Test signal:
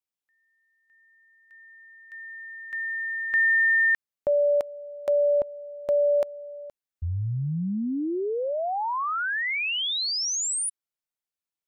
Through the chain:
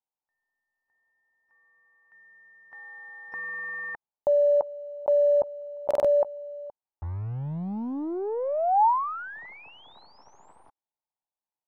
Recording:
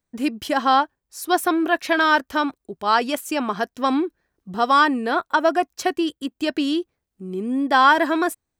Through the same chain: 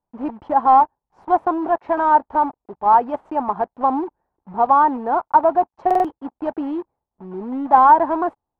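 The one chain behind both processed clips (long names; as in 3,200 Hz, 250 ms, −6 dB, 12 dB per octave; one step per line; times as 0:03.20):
one scale factor per block 3 bits
low-pass with resonance 880 Hz, resonance Q 4.9
buffer that repeats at 0:05.86, samples 2,048, times 3
level −4 dB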